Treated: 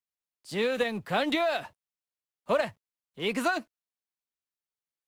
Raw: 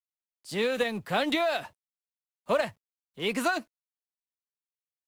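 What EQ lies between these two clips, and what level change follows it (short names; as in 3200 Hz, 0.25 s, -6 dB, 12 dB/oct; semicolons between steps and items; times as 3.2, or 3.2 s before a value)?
high shelf 5200 Hz -4 dB; 0.0 dB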